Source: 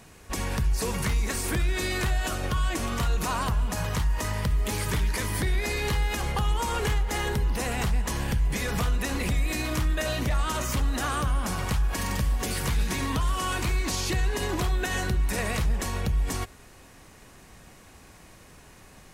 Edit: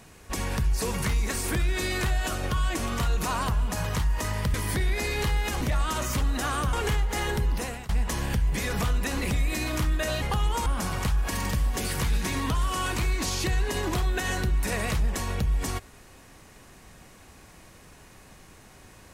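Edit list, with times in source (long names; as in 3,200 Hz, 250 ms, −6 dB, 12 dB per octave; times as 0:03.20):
0:04.54–0:05.20: remove
0:06.27–0:06.71: swap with 0:10.20–0:11.32
0:07.52–0:07.87: fade out, to −23.5 dB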